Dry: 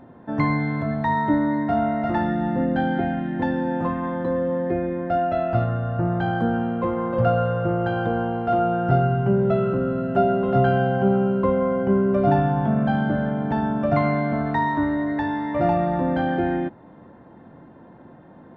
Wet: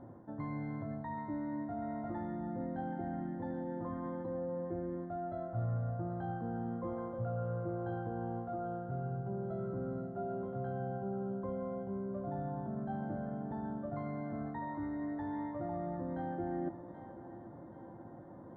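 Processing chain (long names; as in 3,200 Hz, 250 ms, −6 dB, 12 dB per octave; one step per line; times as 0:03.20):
reversed playback
downward compressor 10 to 1, threshold −30 dBFS, peak gain reduction 16.5 dB
reversed playback
moving average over 17 samples
tuned comb filter 110 Hz, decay 0.17 s, harmonics odd, mix 70%
echo with a time of its own for lows and highs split 310 Hz, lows 234 ms, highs 779 ms, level −13 dB
level +2 dB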